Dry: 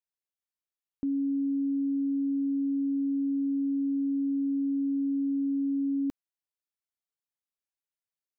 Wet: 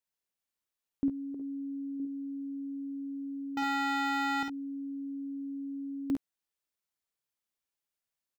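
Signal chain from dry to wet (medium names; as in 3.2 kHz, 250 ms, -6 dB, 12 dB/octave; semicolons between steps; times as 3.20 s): 1.34–2.00 s: dynamic bell 380 Hz, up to +5 dB, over -51 dBFS, Q 4; 3.57–4.43 s: waveshaping leveller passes 5; early reflections 52 ms -4.5 dB, 67 ms -8 dB; trim +2 dB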